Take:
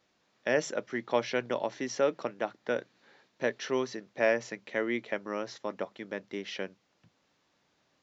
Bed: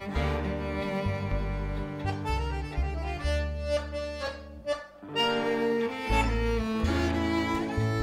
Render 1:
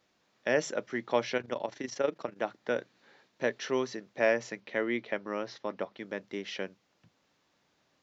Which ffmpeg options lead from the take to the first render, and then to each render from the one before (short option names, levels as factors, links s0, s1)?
-filter_complex "[0:a]asettb=1/sr,asplit=3[s0][s1][s2];[s0]atrim=end=1.374[s3];[s1]atrim=start=1.37:end=2.37,asetpts=PTS-STARTPTS,afade=t=in:d=0.004:c=qsin,afade=t=out:st=0.996:d=0.004:c=qsin,tremolo=f=25:d=0.71[s4];[s2]atrim=start=2.366[s5];[s3][s4]acrossfade=d=0.004:c1=hsin:c2=qsin[s6];[s6][s5]acrossfade=d=0.004:c1=qsin:c2=hsin,asettb=1/sr,asplit=3[s7][s8][s9];[s7]atrim=end=4.604[s10];[s8]atrim=start=4.6:end=6,asetpts=PTS-STARTPTS,afade=t=in:d=0.004:c=qsin,afade=t=out:st=1.396:d=0.004:c=qsin,lowpass=f=5500:w=0.5412,lowpass=f=5500:w=1.3066[s11];[s9]atrim=start=5.996[s12];[s10][s11]acrossfade=d=0.004:c1=hsin:c2=qsin[s13];[s13][s12]acrossfade=d=0.004:c1=qsin:c2=hsin"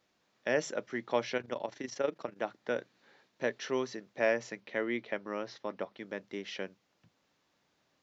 -af "volume=0.75"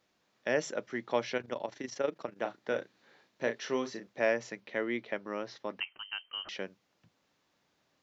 -filter_complex "[0:a]asettb=1/sr,asplit=3[s0][s1][s2];[s0]atrim=end=2.384[s3];[s1]atrim=start=2.38:end=4.07,asetpts=PTS-STARTPTS,afade=t=in:d=0.004:c=qsin,afade=t=out:st=1.686:d=0.004:c=qsin,asplit=2[s4][s5];[s5]adelay=35,volume=0.398[s6];[s4][s6]amix=inputs=2:normalize=0,atrim=end_sample=74529[s7];[s2]atrim=start=4.066[s8];[s3][s7]acrossfade=d=0.004:c1=hsin:c2=qsin[s9];[s9][s8]acrossfade=d=0.004:c1=qsin:c2=hsin,asettb=1/sr,asplit=3[s10][s11][s12];[s10]atrim=end=5.804[s13];[s11]atrim=start=5.8:end=6.49,asetpts=PTS-STARTPTS,afade=t=in:d=0.004:c=qsin,afade=t=out:st=0.686:d=0.004:c=qsin,lowpass=f=2800:t=q:w=0.5098,lowpass=f=2800:t=q:w=0.6013,lowpass=f=2800:t=q:w=0.9,lowpass=f=2800:t=q:w=2.563,afreqshift=-3300[s14];[s12]atrim=start=6.486[s15];[s13][s14]acrossfade=d=0.004:c1=hsin:c2=qsin[s16];[s16][s15]acrossfade=d=0.004:c1=qsin:c2=hsin"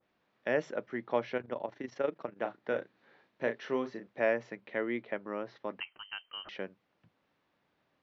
-af "lowpass=2800,adynamicequalizer=threshold=0.00447:dfrequency=1600:dqfactor=0.7:tfrequency=1600:tqfactor=0.7:attack=5:release=100:ratio=0.375:range=2.5:mode=cutabove:tftype=highshelf"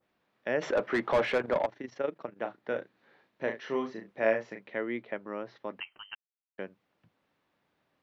-filter_complex "[0:a]asplit=3[s0][s1][s2];[s0]afade=t=out:st=0.61:d=0.02[s3];[s1]asplit=2[s4][s5];[s5]highpass=f=720:p=1,volume=22.4,asoftclip=type=tanh:threshold=0.158[s6];[s4][s6]amix=inputs=2:normalize=0,lowpass=f=1500:p=1,volume=0.501,afade=t=in:st=0.61:d=0.02,afade=t=out:st=1.65:d=0.02[s7];[s2]afade=t=in:st=1.65:d=0.02[s8];[s3][s7][s8]amix=inputs=3:normalize=0,asettb=1/sr,asplit=3[s9][s10][s11];[s9]atrim=end=3.444[s12];[s10]atrim=start=3.44:end=4.7,asetpts=PTS-STARTPTS,afade=t=in:d=0.004:c=qsin,afade=t=out:st=1.256:d=0.004:c=qsin,asplit=2[s13][s14];[s14]adelay=36,volume=0.562[s15];[s13][s15]amix=inputs=2:normalize=0,atrim=end_sample=55566[s16];[s11]atrim=start=4.696[s17];[s12][s16]acrossfade=d=0.004:c1=hsin:c2=qsin[s18];[s18][s17]acrossfade=d=0.004:c1=qsin:c2=hsin,asplit=3[s19][s20][s21];[s19]atrim=end=6.15,asetpts=PTS-STARTPTS,afade=t=out:st=6.146:d=0.004:c=hsin[s22];[s20]atrim=start=6.15:end=6.58,asetpts=PTS-STARTPTS,volume=0[s23];[s21]atrim=start=6.58,asetpts=PTS-STARTPTS,afade=t=in:d=0.004:c=hsin[s24];[s22][s23][s24]concat=n=3:v=0:a=1"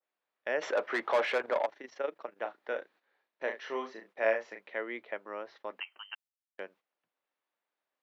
-af "highpass=490,agate=range=0.251:threshold=0.00112:ratio=16:detection=peak"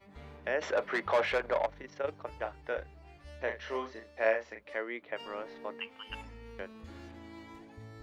-filter_complex "[1:a]volume=0.0841[s0];[0:a][s0]amix=inputs=2:normalize=0"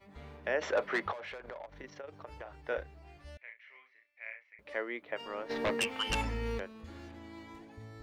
-filter_complex "[0:a]asplit=3[s0][s1][s2];[s0]afade=t=out:st=1.11:d=0.02[s3];[s1]acompressor=threshold=0.01:ratio=16:attack=3.2:release=140:knee=1:detection=peak,afade=t=in:st=1.11:d=0.02,afade=t=out:st=2.67:d=0.02[s4];[s2]afade=t=in:st=2.67:d=0.02[s5];[s3][s4][s5]amix=inputs=3:normalize=0,asettb=1/sr,asplit=3[s6][s7][s8];[s6]atrim=end=3.374[s9];[s7]atrim=start=3.37:end=4.59,asetpts=PTS-STARTPTS,afade=t=in:d=0.004:c=qsin,afade=t=out:st=1.216:d=0.004:c=qsin,bandpass=f=2200:t=q:w=11[s10];[s8]atrim=start=4.586[s11];[s9][s10]acrossfade=d=0.004:c1=hsin:c2=qsin[s12];[s12][s11]acrossfade=d=0.004:c1=qsin:c2=hsin,asplit=3[s13][s14][s15];[s13]afade=t=out:st=5.49:d=0.02[s16];[s14]aeval=exprs='0.0531*sin(PI/2*3.16*val(0)/0.0531)':c=same,afade=t=in:st=5.49:d=0.02,afade=t=out:st=6.58:d=0.02[s17];[s15]afade=t=in:st=6.58:d=0.02[s18];[s16][s17][s18]amix=inputs=3:normalize=0"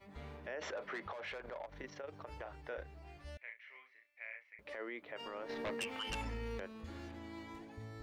-af "acompressor=threshold=0.0141:ratio=2,alimiter=level_in=3.35:limit=0.0631:level=0:latency=1:release=30,volume=0.299"